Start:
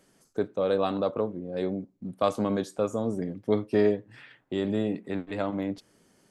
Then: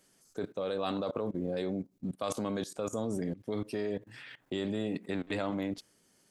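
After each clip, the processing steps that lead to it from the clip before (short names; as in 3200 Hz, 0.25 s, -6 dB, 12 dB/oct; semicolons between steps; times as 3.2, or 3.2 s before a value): level quantiser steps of 19 dB; high shelf 2400 Hz +9 dB; gain +4.5 dB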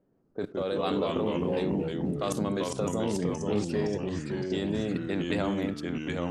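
low-pass opened by the level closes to 560 Hz, open at -31.5 dBFS; echoes that change speed 0.119 s, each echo -2 st, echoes 3; gain +3 dB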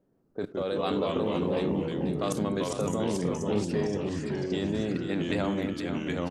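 echo 0.487 s -9 dB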